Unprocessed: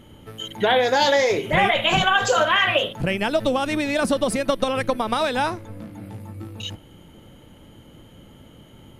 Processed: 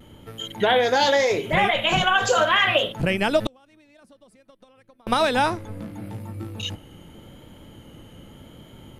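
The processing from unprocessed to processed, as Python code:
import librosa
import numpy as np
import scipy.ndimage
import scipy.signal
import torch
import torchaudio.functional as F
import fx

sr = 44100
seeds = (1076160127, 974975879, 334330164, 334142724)

y = fx.gate_flip(x, sr, shuts_db=-18.0, range_db=-34, at=(3.46, 5.07))
y = fx.vibrato(y, sr, rate_hz=0.84, depth_cents=34.0)
y = fx.rider(y, sr, range_db=10, speed_s=2.0)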